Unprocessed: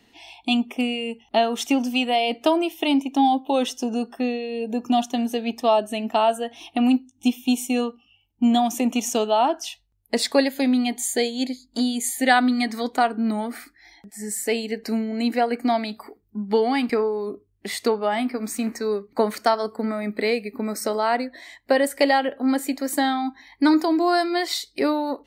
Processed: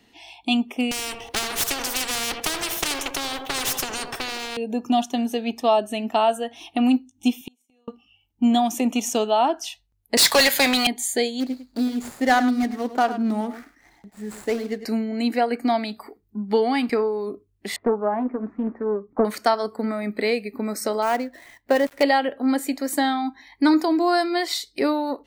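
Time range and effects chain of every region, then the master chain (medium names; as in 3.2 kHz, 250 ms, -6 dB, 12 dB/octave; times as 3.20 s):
0.91–4.57 s: comb filter that takes the minimum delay 2.6 ms + band-passed feedback delay 81 ms, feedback 60%, band-pass 520 Hz, level -12 dB + spectrum-flattening compressor 4:1
7.41–7.88 s: high-pass 250 Hz + inverted gate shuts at -21 dBFS, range -40 dB
10.17–10.87 s: high-pass 920 Hz + waveshaping leveller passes 5
11.40–14.85 s: median filter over 15 samples + delay 103 ms -12.5 dB
17.76–19.25 s: low-pass 1.3 kHz 24 dB/octave + loudspeaker Doppler distortion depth 0.32 ms
21.02–22.03 s: dead-time distortion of 0.085 ms + peaking EQ 7.5 kHz -7 dB 2.3 oct
whole clip: none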